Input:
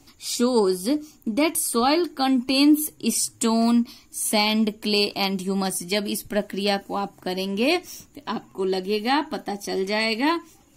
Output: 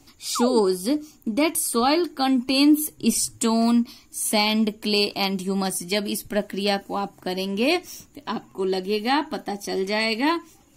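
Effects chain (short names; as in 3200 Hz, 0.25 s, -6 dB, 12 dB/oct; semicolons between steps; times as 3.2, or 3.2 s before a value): 0.35–0.6 painted sound fall 240–1400 Hz -27 dBFS; 2.98–3.38 low shelf 150 Hz +11 dB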